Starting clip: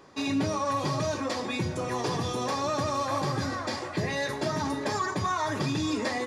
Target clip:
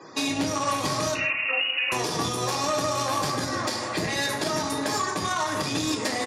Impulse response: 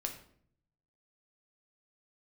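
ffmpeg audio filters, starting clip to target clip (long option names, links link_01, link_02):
-filter_complex "[0:a]aeval=exprs='0.119*(cos(1*acos(clip(val(0)/0.119,-1,1)))-cos(1*PI/2))+0.0211*(cos(3*acos(clip(val(0)/0.119,-1,1)))-cos(3*PI/2))':channel_layout=same,asettb=1/sr,asplit=3[link_01][link_02][link_03];[link_01]atrim=end=1.154[link_04];[link_02]atrim=start=1.15:end=1.92,asetpts=PTS-STARTPTS,afade=type=in:duration=0.004:curve=qsin,afade=type=out:start_time=0.766:duration=0.004:curve=qsin,lowpass=frequency=2600:width_type=q:width=0.5098,lowpass=frequency=2600:width_type=q:width=0.6013,lowpass=frequency=2600:width_type=q:width=0.9,lowpass=frequency=2600:width_type=q:width=2.563,afreqshift=-3000[link_05];[link_03]atrim=start=1.916[link_06];[link_04][link_05]acrossfade=duration=0.004:curve1=hsin:curve2=qsin[link_07];[link_07][link_06]acrossfade=duration=0.004:curve1=qsin:curve2=hsin,asplit=2[link_08][link_09];[link_09]adelay=156,lowpass=frequency=1400:poles=1,volume=-10.5dB,asplit=2[link_10][link_11];[link_11]adelay=156,lowpass=frequency=1400:poles=1,volume=0.29,asplit=2[link_12][link_13];[link_13]adelay=156,lowpass=frequency=1400:poles=1,volume=0.29[link_14];[link_08][link_10][link_12][link_14]amix=inputs=4:normalize=0,asplit=2[link_15][link_16];[link_16]acompressor=threshold=-35dB:ratio=6,volume=2dB[link_17];[link_15][link_17]amix=inputs=2:normalize=0,aemphasis=mode=production:type=50kf[link_18];[1:a]atrim=start_sample=2205,atrim=end_sample=4410[link_19];[link_18][link_19]afir=irnorm=-1:irlink=0,acrossover=split=180|940[link_20][link_21][link_22];[link_20]aeval=exprs='max(val(0),0)':channel_layout=same[link_23];[link_23][link_21][link_22]amix=inputs=3:normalize=0,alimiter=limit=-23.5dB:level=0:latency=1:release=448,highpass=56,afftfilt=real='re*gte(hypot(re,im),0.00158)':imag='im*gte(hypot(re,im),0.00158)':win_size=1024:overlap=0.75,volume=8dB"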